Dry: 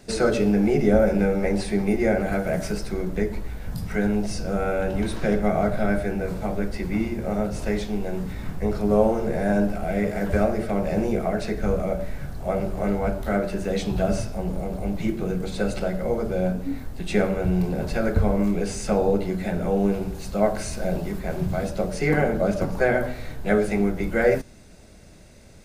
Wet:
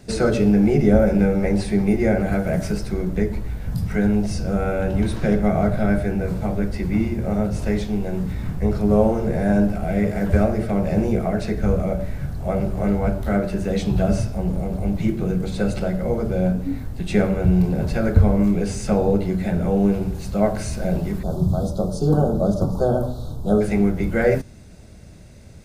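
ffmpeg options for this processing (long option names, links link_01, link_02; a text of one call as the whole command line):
ffmpeg -i in.wav -filter_complex "[0:a]asettb=1/sr,asplit=3[link_01][link_02][link_03];[link_01]atrim=end=21.234[link_04];[link_02]atrim=start=21.23:end=23.61,asetpts=PTS-STARTPTS,afade=type=in:duration=0.004:curve=qsin,afade=type=out:start_time=2.376:duration=0.004:curve=qsin,asuperstop=centerf=2100:order=8:qfactor=1[link_05];[link_03]atrim=start=23.606[link_06];[link_04][link_05]acrossfade=duration=0.004:curve1=hsin:curve2=qsin[link_07];[link_07][link_06]acrossfade=duration=0.004:curve1=qsin:curve2=hsin,equalizer=frequency=98:width_type=o:width=2.2:gain=9" out.wav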